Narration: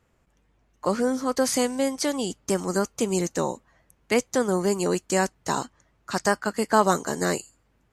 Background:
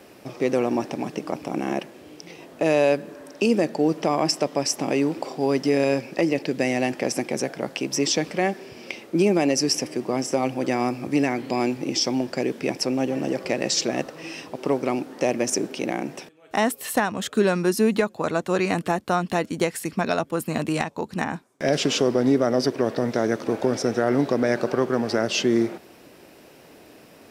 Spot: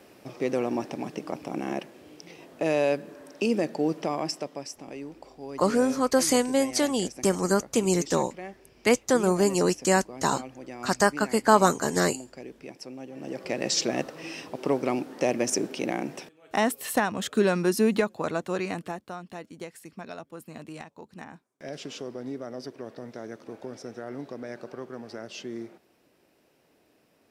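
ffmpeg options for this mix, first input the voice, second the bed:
ffmpeg -i stem1.wav -i stem2.wav -filter_complex "[0:a]adelay=4750,volume=1dB[link_01];[1:a]volume=9.5dB,afade=type=out:start_time=3.88:duration=0.88:silence=0.251189,afade=type=in:start_time=13.12:duration=0.63:silence=0.188365,afade=type=out:start_time=17.98:duration=1.17:silence=0.199526[link_02];[link_01][link_02]amix=inputs=2:normalize=0" out.wav

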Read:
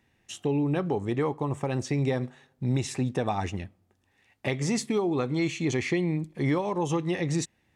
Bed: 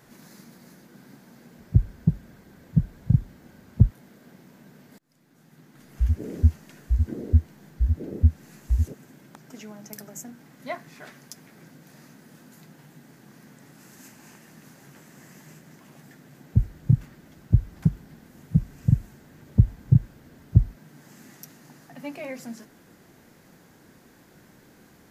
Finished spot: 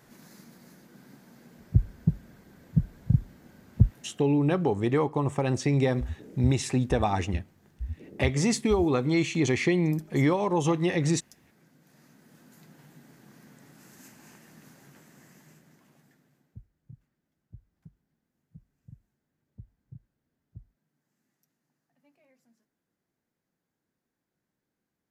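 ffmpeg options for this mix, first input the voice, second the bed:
ffmpeg -i stem1.wav -i stem2.wav -filter_complex "[0:a]adelay=3750,volume=2.5dB[link_01];[1:a]volume=6dB,afade=type=out:start_time=4.01:duration=0.28:silence=0.334965,afade=type=in:start_time=11.71:duration=1.11:silence=0.354813,afade=type=out:start_time=14.63:duration=1.99:silence=0.0446684[link_02];[link_01][link_02]amix=inputs=2:normalize=0" out.wav

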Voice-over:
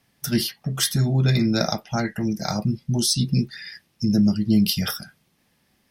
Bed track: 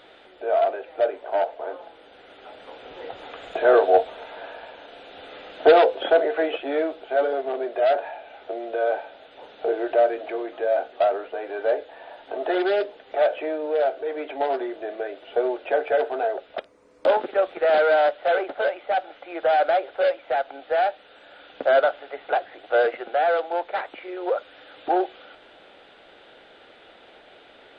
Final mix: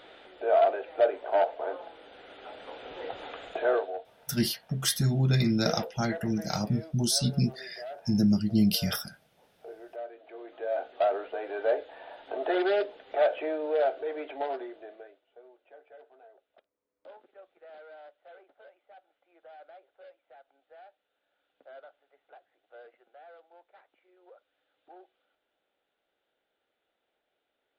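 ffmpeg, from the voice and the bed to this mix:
ffmpeg -i stem1.wav -i stem2.wav -filter_complex "[0:a]adelay=4050,volume=-5dB[link_01];[1:a]volume=15.5dB,afade=type=out:start_time=3.24:duration=0.7:silence=0.105925,afade=type=in:start_time=10.24:duration=0.95:silence=0.141254,afade=type=out:start_time=13.91:duration=1.32:silence=0.0446684[link_02];[link_01][link_02]amix=inputs=2:normalize=0" out.wav

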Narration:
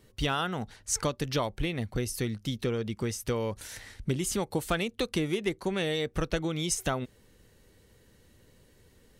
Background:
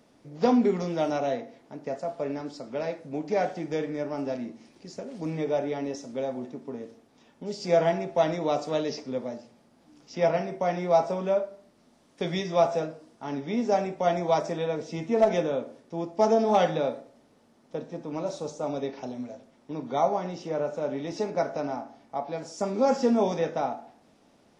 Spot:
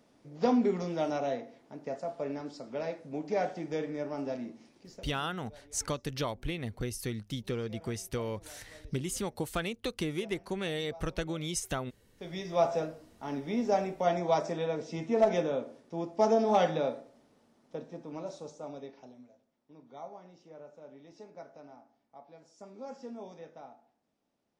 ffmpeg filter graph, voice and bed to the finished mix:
ffmpeg -i stem1.wav -i stem2.wav -filter_complex "[0:a]adelay=4850,volume=-4.5dB[link_01];[1:a]volume=20.5dB,afade=type=out:start_time=4.62:duration=0.68:silence=0.0630957,afade=type=in:start_time=12.07:duration=0.62:silence=0.0562341,afade=type=out:start_time=17.13:duration=2.2:silence=0.141254[link_02];[link_01][link_02]amix=inputs=2:normalize=0" out.wav

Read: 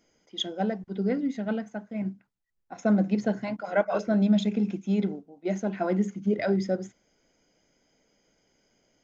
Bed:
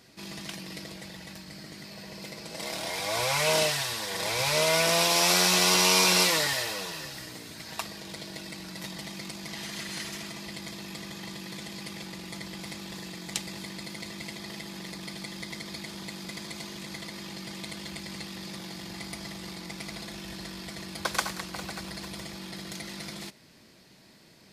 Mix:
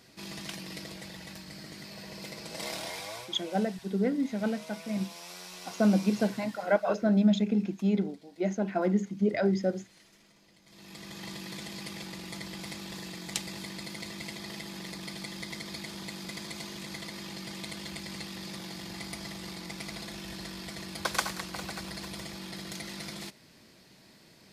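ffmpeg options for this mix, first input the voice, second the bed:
ffmpeg -i stem1.wav -i stem2.wav -filter_complex "[0:a]adelay=2950,volume=-1dB[link_01];[1:a]volume=21dB,afade=type=out:start_time=2.65:duration=0.65:silence=0.0794328,afade=type=in:start_time=10.65:duration=0.64:silence=0.0794328[link_02];[link_01][link_02]amix=inputs=2:normalize=0" out.wav

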